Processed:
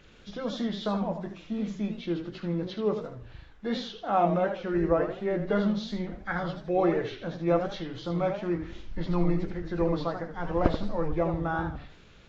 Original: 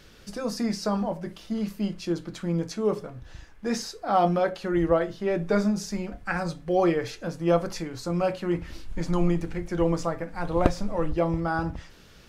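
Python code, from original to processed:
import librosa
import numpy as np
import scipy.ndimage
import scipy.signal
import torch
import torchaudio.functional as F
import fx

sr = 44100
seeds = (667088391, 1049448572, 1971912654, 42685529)

y = fx.freq_compress(x, sr, knee_hz=1700.0, ratio=1.5)
y = fx.echo_warbled(y, sr, ms=80, feedback_pct=32, rate_hz=2.8, cents=178, wet_db=-8.5)
y = F.gain(torch.from_numpy(y), -3.0).numpy()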